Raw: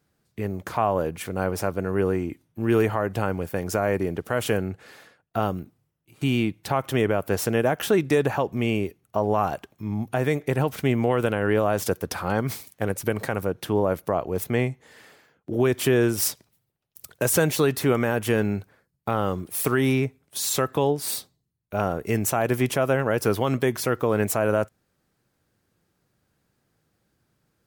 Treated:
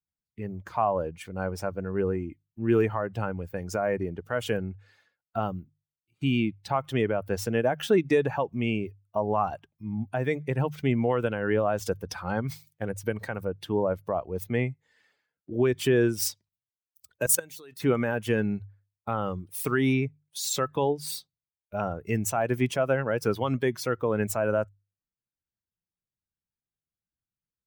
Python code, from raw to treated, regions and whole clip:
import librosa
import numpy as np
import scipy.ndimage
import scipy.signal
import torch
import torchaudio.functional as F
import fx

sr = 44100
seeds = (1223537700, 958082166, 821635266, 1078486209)

y = fx.chain(x, sr, fx.high_shelf(hz=6200.0, db=8.5),
    fx.level_steps(step_db=17),
    fx.highpass(hz=290.0, slope=6), at=(17.26, 17.8))
y = fx.bin_expand(y, sr, power=1.5)
y = fx.peak_eq(y, sr, hz=12000.0, db=-10.5, octaves=0.25)
y = fx.hum_notches(y, sr, base_hz=50, count=3)